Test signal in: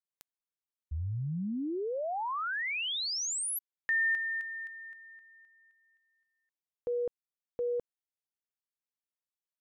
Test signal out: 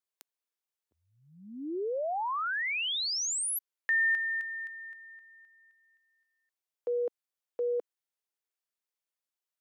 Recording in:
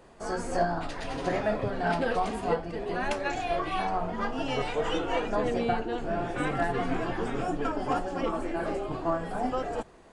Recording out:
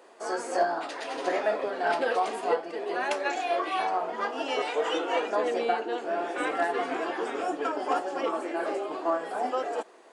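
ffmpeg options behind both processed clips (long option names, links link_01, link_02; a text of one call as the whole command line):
ffmpeg -i in.wav -af "highpass=frequency=330:width=0.5412,highpass=frequency=330:width=1.3066,volume=2dB" out.wav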